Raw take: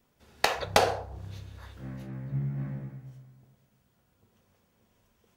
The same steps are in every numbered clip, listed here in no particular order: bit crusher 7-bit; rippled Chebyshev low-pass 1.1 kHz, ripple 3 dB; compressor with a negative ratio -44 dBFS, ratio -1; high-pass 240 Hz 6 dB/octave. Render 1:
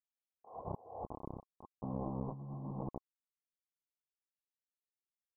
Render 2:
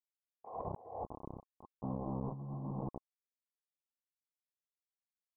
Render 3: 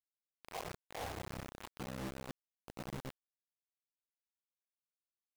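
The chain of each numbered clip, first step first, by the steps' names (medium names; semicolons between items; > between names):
high-pass > bit crusher > compressor with a negative ratio > rippled Chebyshev low-pass; high-pass > bit crusher > rippled Chebyshev low-pass > compressor with a negative ratio; rippled Chebyshev low-pass > compressor with a negative ratio > high-pass > bit crusher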